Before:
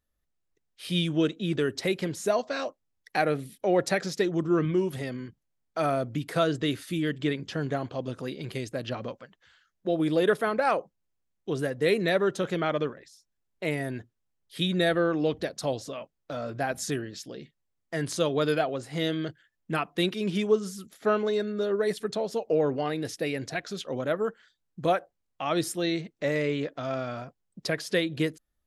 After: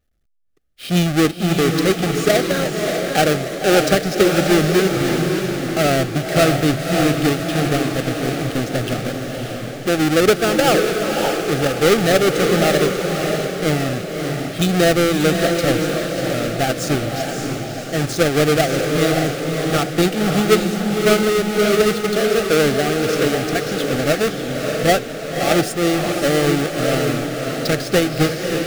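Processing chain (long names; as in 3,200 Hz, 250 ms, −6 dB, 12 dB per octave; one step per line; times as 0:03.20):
each half-wave held at its own peak
Butterworth band-reject 980 Hz, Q 3.1
high-shelf EQ 7,700 Hz −3.5 dB
feedback delay with all-pass diffusion 576 ms, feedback 48%, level −4.5 dB
feedback echo with a swinging delay time 586 ms, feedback 54%, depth 194 cents, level −12 dB
level +5.5 dB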